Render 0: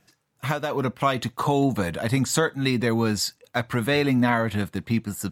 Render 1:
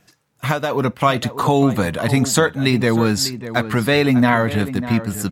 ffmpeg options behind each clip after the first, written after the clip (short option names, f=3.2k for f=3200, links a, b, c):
-filter_complex "[0:a]asplit=2[a][b];[b]adelay=596,lowpass=f=1.8k:p=1,volume=-12dB,asplit=2[c][d];[d]adelay=596,lowpass=f=1.8k:p=1,volume=0.18[e];[a][c][e]amix=inputs=3:normalize=0,volume=6dB"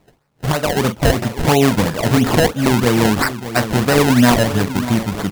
-filter_complex "[0:a]asplit=2[a][b];[b]adelay=41,volume=-10dB[c];[a][c]amix=inputs=2:normalize=0,acrusher=samples=26:mix=1:aa=0.000001:lfo=1:lforange=26:lforate=3,volume=2dB"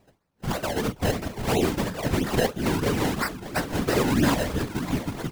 -af "areverse,acompressor=mode=upward:threshold=-34dB:ratio=2.5,areverse,afftfilt=real='hypot(re,im)*cos(2*PI*random(0))':imag='hypot(re,im)*sin(2*PI*random(1))':win_size=512:overlap=0.75,volume=-4dB"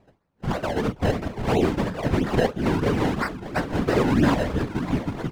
-af "aemphasis=mode=reproduction:type=75kf,volume=2.5dB"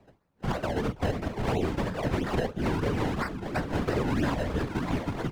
-filter_complex "[0:a]acrossover=split=130|360[a][b][c];[a]acompressor=threshold=-30dB:ratio=4[d];[b]acompressor=threshold=-34dB:ratio=4[e];[c]acompressor=threshold=-30dB:ratio=4[f];[d][e][f]amix=inputs=3:normalize=0"